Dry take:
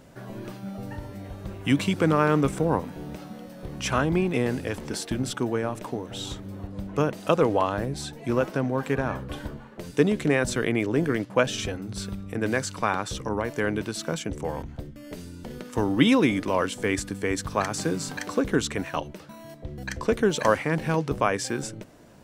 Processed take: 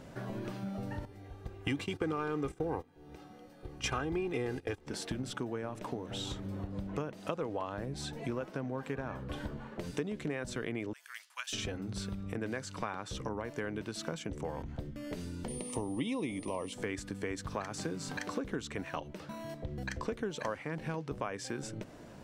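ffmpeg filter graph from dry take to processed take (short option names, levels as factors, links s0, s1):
-filter_complex "[0:a]asettb=1/sr,asplit=3[s0][s1][s2];[s0]atrim=end=1.054[s3];[s1]atrim=start=1.05:end=4.87,asetpts=PTS-STARTPTS,afade=t=in:d=0.004:c=qsin,afade=t=out:st=3.816:d=0.004:c=qsin,agate=range=0.112:threshold=0.0282:ratio=16:release=100:detection=peak,acontrast=68,aecho=1:1:2.5:0.58,atrim=end_sample=168462[s4];[s2]atrim=start=4.866[s5];[s3][s4]acrossfade=d=0.004:c1=hsin:c2=qsin[s6];[s6][s5]acrossfade=d=0.004:c1=qsin:c2=hsin,asettb=1/sr,asplit=3[s7][s8][s9];[s7]atrim=end=10.934[s10];[s8]atrim=start=10.93:end=11.53,asetpts=PTS-STARTPTS,afade=t=in:d=0.004:c=qsin,afade=t=out:st=0.596:d=0.004:c=qsin,highpass=f=1000:w=0.5412,highpass=f=1000:w=1.3066,aderivative[s11];[s9]atrim=start=11.526[s12];[s10][s11]acrossfade=d=0.004:c1=hsin:c2=qsin[s13];[s13][s12]acrossfade=d=0.004:c1=qsin:c2=hsin,asettb=1/sr,asplit=3[s14][s15][s16];[s14]atrim=end=15.484[s17];[s15]atrim=start=15.48:end=16.73,asetpts=PTS-STARTPTS,afade=t=in:d=0.004:c=qsin,afade=t=out:st=1.246:d=0.004:c=qsin,aeval=exprs='val(0)+0.0141*sin(2*PI*9300*n/s)':c=same,asuperstop=centerf=1500:order=4:qfactor=1.8[s18];[s16]atrim=start=16.726[s19];[s17][s18]acrossfade=d=0.004:c1=hsin:c2=qsin[s20];[s20][s19]acrossfade=d=0.004:c1=qsin:c2=hsin,highshelf=f=9100:g=-9.5,acompressor=threshold=0.0141:ratio=4,volume=1.12"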